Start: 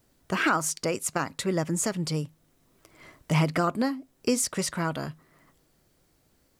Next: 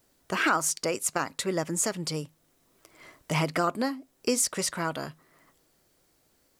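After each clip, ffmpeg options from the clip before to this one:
-af "bass=f=250:g=-7,treble=f=4k:g=2"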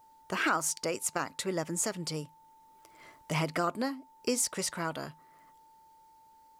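-af "aeval=exprs='val(0)+0.00224*sin(2*PI*890*n/s)':c=same,volume=-4dB"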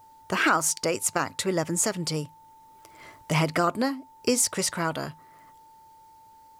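-af "equalizer=f=100:t=o:w=0.44:g=10,volume=6.5dB"

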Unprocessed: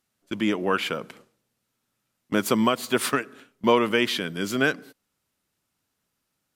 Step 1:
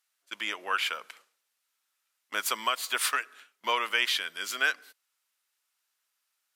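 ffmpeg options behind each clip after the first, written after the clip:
-af "highpass=1.2k"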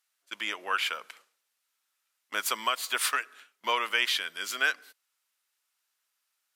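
-af anull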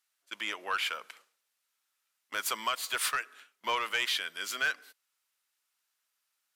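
-af "asoftclip=type=tanh:threshold=-19dB,volume=-1.5dB"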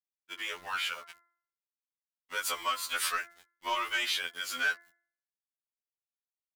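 -af "aeval=exprs='val(0)*gte(abs(val(0)),0.00501)':c=same,bandreject=f=114.4:t=h:w=4,bandreject=f=228.8:t=h:w=4,bandreject=f=343.2:t=h:w=4,bandreject=f=457.6:t=h:w=4,bandreject=f=572:t=h:w=4,bandreject=f=686.4:t=h:w=4,bandreject=f=800.8:t=h:w=4,bandreject=f=915.2:t=h:w=4,bandreject=f=1.0296k:t=h:w=4,bandreject=f=1.144k:t=h:w=4,bandreject=f=1.2584k:t=h:w=4,bandreject=f=1.3728k:t=h:w=4,bandreject=f=1.4872k:t=h:w=4,bandreject=f=1.6016k:t=h:w=4,bandreject=f=1.716k:t=h:w=4,bandreject=f=1.8304k:t=h:w=4,bandreject=f=1.9448k:t=h:w=4,bandreject=f=2.0592k:t=h:w=4,bandreject=f=2.1736k:t=h:w=4,afftfilt=real='re*2*eq(mod(b,4),0)':imag='im*2*eq(mod(b,4),0)':win_size=2048:overlap=0.75,volume=2dB"

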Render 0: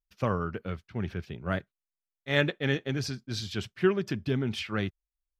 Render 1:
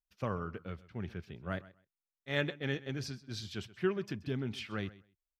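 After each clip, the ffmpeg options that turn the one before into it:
-af "aecho=1:1:129|258:0.112|0.0191,volume=-7.5dB"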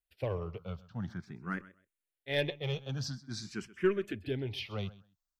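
-filter_complex "[0:a]aeval=exprs='0.15*(cos(1*acos(clip(val(0)/0.15,-1,1)))-cos(1*PI/2))+0.0211*(cos(4*acos(clip(val(0)/0.15,-1,1)))-cos(4*PI/2))+0.0075*(cos(5*acos(clip(val(0)/0.15,-1,1)))-cos(5*PI/2))+0.0075*(cos(6*acos(clip(val(0)/0.15,-1,1)))-cos(6*PI/2))+0.00531*(cos(7*acos(clip(val(0)/0.15,-1,1)))-cos(7*PI/2))':c=same,asplit=2[a][b];[b]afreqshift=0.48[c];[a][c]amix=inputs=2:normalize=1,volume=4dB"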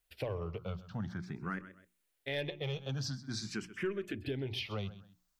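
-filter_complex "[0:a]bandreject=f=60:t=h:w=6,bandreject=f=120:t=h:w=6,bandreject=f=180:t=h:w=6,bandreject=f=240:t=h:w=6,bandreject=f=300:t=h:w=6,bandreject=f=360:t=h:w=6,asplit=2[a][b];[b]alimiter=level_in=3.5dB:limit=-24dB:level=0:latency=1:release=96,volume=-3.5dB,volume=2.5dB[c];[a][c]amix=inputs=2:normalize=0,acompressor=threshold=-43dB:ratio=2.5,volume=3dB"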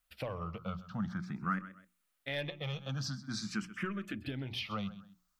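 -af "equalizer=f=100:t=o:w=0.33:g=-7,equalizer=f=200:t=o:w=0.33:g=7,equalizer=f=400:t=o:w=0.33:g=-12,equalizer=f=1.25k:t=o:w=0.33:g=10"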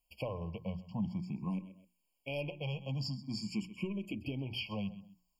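-af "afftfilt=real='re*eq(mod(floor(b*sr/1024/1100),2),0)':imag='im*eq(mod(floor(b*sr/1024/1100),2),0)':win_size=1024:overlap=0.75,volume=1dB"

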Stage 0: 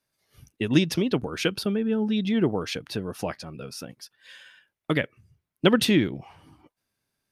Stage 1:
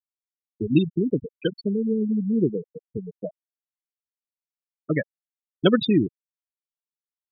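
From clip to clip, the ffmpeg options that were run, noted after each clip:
-af "afftfilt=real='re*gte(hypot(re,im),0.2)':imag='im*gte(hypot(re,im),0.2)':win_size=1024:overlap=0.75,volume=1.5dB"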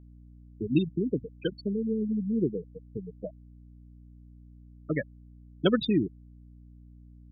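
-af "aeval=exprs='val(0)+0.00631*(sin(2*PI*60*n/s)+sin(2*PI*2*60*n/s)/2+sin(2*PI*3*60*n/s)/3+sin(2*PI*4*60*n/s)/4+sin(2*PI*5*60*n/s)/5)':c=same,volume=-5.5dB"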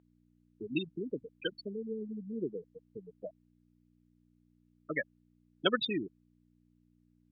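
-af "bandpass=f=2.1k:t=q:w=0.55:csg=0,volume=2.5dB"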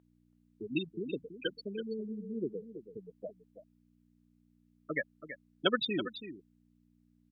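-af "aecho=1:1:329:0.266"

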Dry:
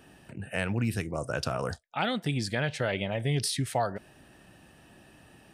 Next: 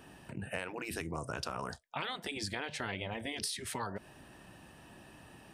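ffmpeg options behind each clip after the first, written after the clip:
-af "afftfilt=real='re*lt(hypot(re,im),0.158)':imag='im*lt(hypot(re,im),0.158)':win_size=1024:overlap=0.75,equalizer=f=1k:w=4.1:g=6,acompressor=threshold=-35dB:ratio=4"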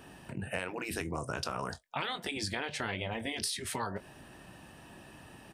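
-filter_complex "[0:a]asplit=2[a][b];[b]adelay=22,volume=-12.5dB[c];[a][c]amix=inputs=2:normalize=0,volume=2.5dB"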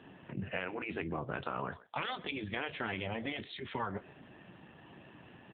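-filter_complex "[0:a]asplit=2[a][b];[b]adelay=130,highpass=300,lowpass=3.4k,asoftclip=type=hard:threshold=-27dB,volume=-18dB[c];[a][c]amix=inputs=2:normalize=0" -ar 8000 -c:a libopencore_amrnb -b:a 7400

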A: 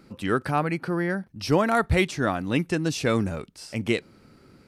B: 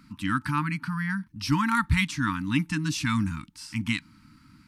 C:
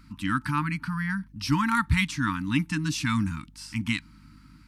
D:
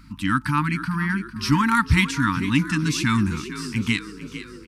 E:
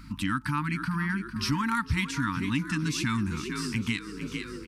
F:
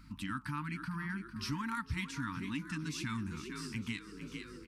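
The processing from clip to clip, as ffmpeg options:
-af "afftfilt=real='re*(1-between(b*sr/4096,320,880))':imag='im*(1-between(b*sr/4096,320,880))':win_size=4096:overlap=0.75"
-af "aeval=exprs='val(0)+0.00224*(sin(2*PI*50*n/s)+sin(2*PI*2*50*n/s)/2+sin(2*PI*3*50*n/s)/3+sin(2*PI*4*50*n/s)/4+sin(2*PI*5*50*n/s)/5)':c=same"
-filter_complex "[0:a]asplit=7[a][b][c][d][e][f][g];[b]adelay=452,afreqshift=45,volume=-13dB[h];[c]adelay=904,afreqshift=90,volume=-18.4dB[i];[d]adelay=1356,afreqshift=135,volume=-23.7dB[j];[e]adelay=1808,afreqshift=180,volume=-29.1dB[k];[f]adelay=2260,afreqshift=225,volume=-34.4dB[l];[g]adelay=2712,afreqshift=270,volume=-39.8dB[m];[a][h][i][j][k][l][m]amix=inputs=7:normalize=0,volume=5dB"
-af "acompressor=threshold=-31dB:ratio=2.5,volume=1.5dB"
-af "flanger=delay=1.2:depth=6.9:regen=-80:speed=1.1:shape=triangular,volume=-5.5dB"

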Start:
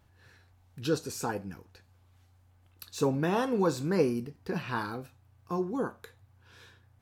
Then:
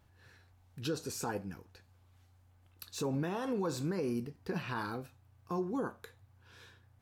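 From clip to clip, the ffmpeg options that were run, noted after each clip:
-af "alimiter=level_in=0.5dB:limit=-24dB:level=0:latency=1:release=64,volume=-0.5dB,volume=-2dB"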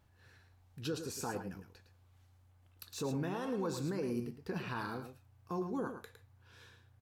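-af "aecho=1:1:109:0.376,volume=-2.5dB"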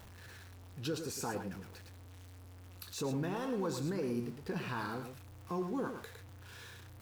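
-af "aeval=exprs='val(0)+0.5*0.00355*sgn(val(0))':c=same"

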